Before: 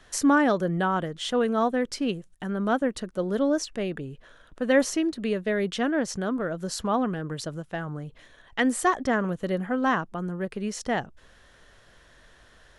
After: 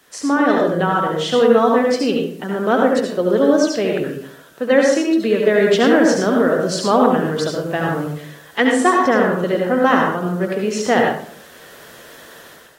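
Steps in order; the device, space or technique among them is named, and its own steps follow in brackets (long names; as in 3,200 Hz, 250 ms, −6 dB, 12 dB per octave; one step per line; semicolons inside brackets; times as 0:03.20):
filmed off a television (band-pass filter 200–7,000 Hz; parametric band 440 Hz +4.5 dB 0.47 octaves; convolution reverb RT60 0.55 s, pre-delay 65 ms, DRR 0.5 dB; white noise bed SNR 35 dB; automatic gain control gain up to 11.5 dB; AAC 48 kbit/s 44,100 Hz)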